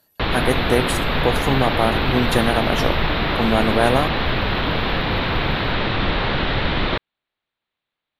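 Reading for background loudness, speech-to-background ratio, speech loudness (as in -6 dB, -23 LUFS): -21.0 LUFS, -1.0 dB, -22.0 LUFS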